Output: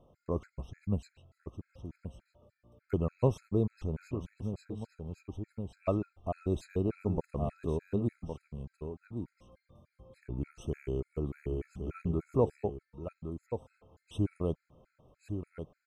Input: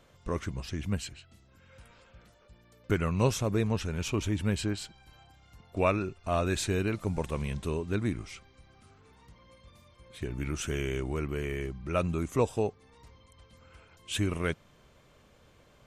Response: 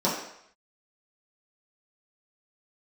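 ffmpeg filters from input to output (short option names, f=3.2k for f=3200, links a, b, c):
-filter_complex "[0:a]aecho=1:1:1112:0.422,asettb=1/sr,asplit=3[a][b][c];[a]atrim=end=4.024[d];[b]atrim=start=4.02:end=5.86,asetpts=PTS-STARTPTS,afade=t=in:d=0.004:c=qsin,afade=t=out:st=1.836:d=0.004:c=qsin,acompressor=threshold=-31dB:ratio=5[e];[c]atrim=start=5.856[f];[d][e]acrossfade=d=0.004:c1=hsin:c2=qsin[g];[g][f]acrossfade=d=0.004:c1=qsin:c2=hsin,firequalizer=gain_entry='entry(720,0);entry(1600,-15);entry(5400,-18)':delay=0.05:min_phase=1,afftfilt=real='re*gt(sin(2*PI*3.4*pts/sr)*(1-2*mod(floor(b*sr/1024/1300),2)),0)':imag='im*gt(sin(2*PI*3.4*pts/sr)*(1-2*mod(floor(b*sr/1024/1300),2)),0)':win_size=1024:overlap=0.75"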